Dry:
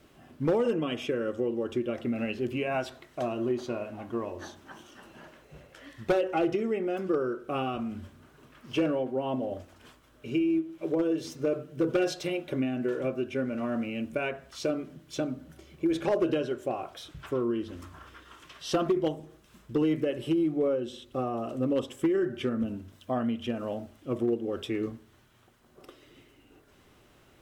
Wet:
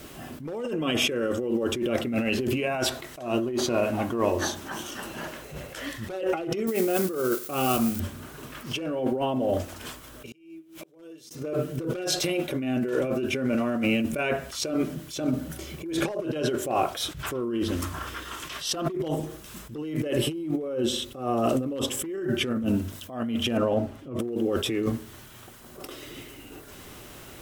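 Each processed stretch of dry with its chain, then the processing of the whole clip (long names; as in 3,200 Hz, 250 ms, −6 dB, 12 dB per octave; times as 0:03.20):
0:06.67–0:08.00: spike at every zero crossing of −34.5 dBFS + expander for the loud parts, over −45 dBFS
0:10.26–0:11.31: high-shelf EQ 2,000 Hz +9 dB + gate with flip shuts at −27 dBFS, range −31 dB + downward compressor 12 to 1, threshold −52 dBFS
0:23.57–0:24.19: low-pass filter 1,600 Hz 6 dB per octave + comb filter 7.4 ms, depth 33%
whole clip: high-shelf EQ 6,400 Hz +11.5 dB; compressor whose output falls as the input rises −35 dBFS, ratio −1; level that may rise only so fast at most 110 dB per second; level +8.5 dB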